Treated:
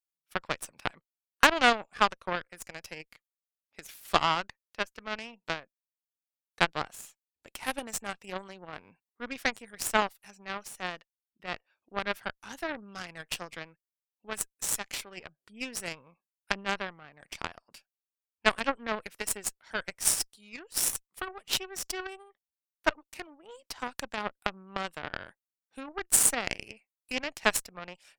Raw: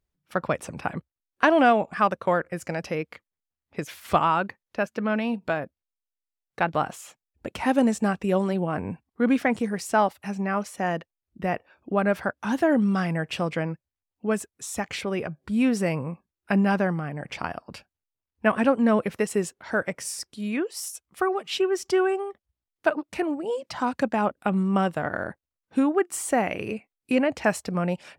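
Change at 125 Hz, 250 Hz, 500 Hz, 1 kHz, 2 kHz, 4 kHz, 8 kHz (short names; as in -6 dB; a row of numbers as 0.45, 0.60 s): -16.5, -17.0, -12.0, -6.0, -2.0, +4.0, +6.5 dB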